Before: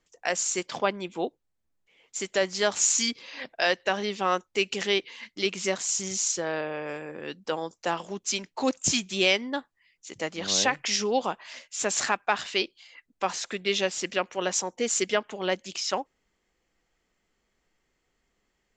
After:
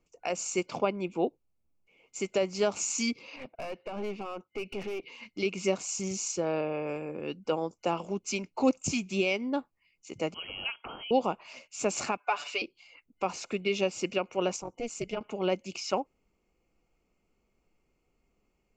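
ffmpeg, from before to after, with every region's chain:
-filter_complex "[0:a]asettb=1/sr,asplit=3[a][b][c];[a]atrim=end=3.364[d];[b]atrim=start=3.36:end=5.03,asetpts=PTS-STARTPTS,afade=t=in:d=0.004:c=qsin,afade=t=out:st=1.666:d=0.004:c=qsin,highpass=120,lowpass=3.2k,acompressor=threshold=-25dB:ratio=6:attack=3.2:release=140:knee=1:detection=peak,aeval=exprs='(tanh(39.8*val(0)+0.4)-tanh(0.4))/39.8':c=same[e];[c]atrim=start=5.026[f];[d][e]acrossfade=d=0.004:c1=hsin:c2=qsin[g];[g][f]acrossfade=d=0.004:c1=qsin:c2=hsin,asettb=1/sr,asplit=3[h][i][j];[h]atrim=end=10.344[k];[i]atrim=start=10.34:end=11.11,asetpts=PTS-STARTPTS,afade=t=in:d=0.004:c=qsin,afade=t=out:st=0.766:d=0.004:c=qsin,highshelf=f=2.5k:g=-10,acompressor=threshold=-30dB:ratio=2:attack=3.2:release=140:knee=1:detection=peak,lowpass=f=2.9k:t=q:w=0.5098,lowpass=f=2.9k:t=q:w=0.6013,lowpass=f=2.9k:t=q:w=0.9,lowpass=f=2.9k:t=q:w=2.563,afreqshift=-3400[l];[j]atrim=start=11.106[m];[k][l]acrossfade=d=0.004:c1=hsin:c2=qsin[n];[n][m]acrossfade=d=0.004:c1=qsin:c2=hsin,asettb=1/sr,asplit=3[o][p][q];[o]atrim=end=12.174[r];[p]atrim=start=12.17:end=12.62,asetpts=PTS-STARTPTS,afade=t=in:d=0.004:c=qsin,afade=t=out:st=0.446:d=0.004:c=qsin,highpass=600,aecho=1:1:6.9:1,atrim=end_sample=19845[s];[q]atrim=start=12.616[t];[r][s]acrossfade=d=0.004:c1=hsin:c2=qsin[u];[u][t]acrossfade=d=0.004:c1=qsin:c2=hsin,asettb=1/sr,asplit=3[v][w][x];[v]atrim=end=14.564[y];[w]atrim=start=14.56:end=15.21,asetpts=PTS-STARTPTS,afade=t=in:d=0.004:c=qsin,afade=t=out:st=0.646:d=0.004:c=qsin,tremolo=f=230:d=0.788,acompressor=threshold=-38dB:ratio=1.5:attack=3.2:release=140:knee=1:detection=peak[z];[x]atrim=start=15.206[aa];[y][z]acrossfade=d=0.004:c1=hsin:c2=qsin[ab];[ab][aa]acrossfade=d=0.004:c1=qsin:c2=hsin,superequalizer=11b=0.355:12b=1.78:13b=0.562,alimiter=limit=-14dB:level=0:latency=1:release=156,tiltshelf=f=970:g=5.5,volume=-2dB"

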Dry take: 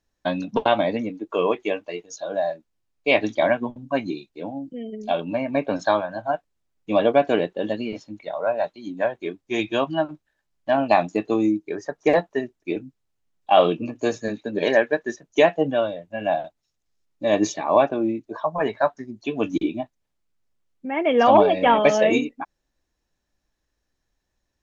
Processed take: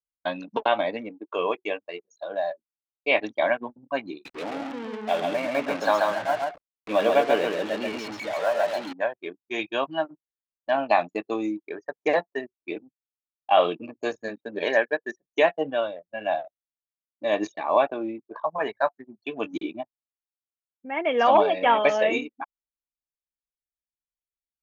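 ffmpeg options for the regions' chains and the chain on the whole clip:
-filter_complex "[0:a]asettb=1/sr,asplit=3[a][b][c];[a]atrim=end=4.254[d];[b]atrim=start=4.25:end=8.93,asetpts=PTS-STARTPTS,afade=t=in:d=0.004:c=qsin,afade=t=out:st=4.676:d=0.004:c=qsin,aeval=exprs='val(0)+0.5*0.0447*sgn(val(0))':c=same,aecho=1:1:135:0.668,atrim=end_sample=206388[e];[c]atrim=start=8.926[f];[d][e]acrossfade=d=0.004:c1=hsin:c2=qsin[g];[g][f]acrossfade=d=0.004:c1=qsin:c2=hsin,acrossover=split=3400[h][i];[i]acompressor=threshold=-42dB:ratio=4:attack=1:release=60[j];[h][j]amix=inputs=2:normalize=0,anlmdn=6.31,highpass=f=710:p=1"

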